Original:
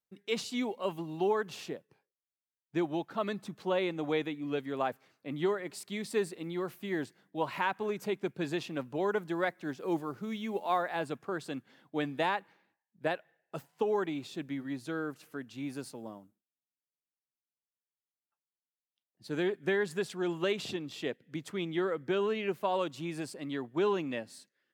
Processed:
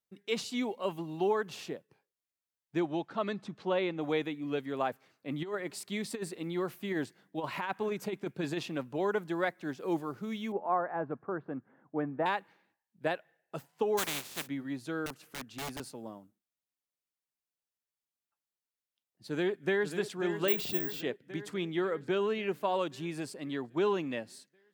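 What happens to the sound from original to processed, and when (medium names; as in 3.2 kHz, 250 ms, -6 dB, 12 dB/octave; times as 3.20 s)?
2.79–4.00 s: low-pass 8.5 kHz -> 4.4 kHz
5.28–8.77 s: compressor with a negative ratio -32 dBFS, ratio -0.5
10.52–12.26 s: low-pass 1.5 kHz 24 dB/octave
13.97–14.46 s: spectral contrast reduction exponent 0.26
15.06–15.80 s: integer overflow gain 34 dB
19.28–19.91 s: echo throw 540 ms, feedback 65%, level -9.5 dB
20.48–21.01 s: careless resampling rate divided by 2×, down filtered, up zero stuff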